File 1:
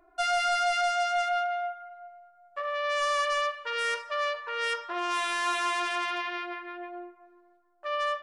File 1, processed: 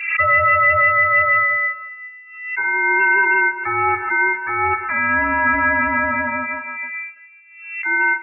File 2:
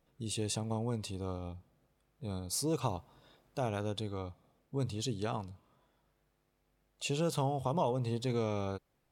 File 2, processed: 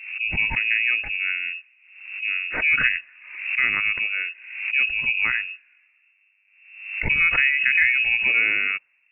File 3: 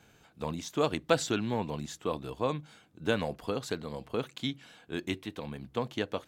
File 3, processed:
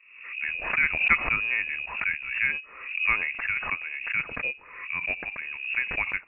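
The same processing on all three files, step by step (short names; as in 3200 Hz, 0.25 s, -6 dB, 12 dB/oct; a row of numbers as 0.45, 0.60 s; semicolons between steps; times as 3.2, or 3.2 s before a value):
low-pass opened by the level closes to 610 Hz, open at -25.5 dBFS; inverted band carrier 2700 Hz; backwards sustainer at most 70 dB/s; normalise peaks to -6 dBFS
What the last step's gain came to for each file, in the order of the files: +12.0, +12.5, +3.5 dB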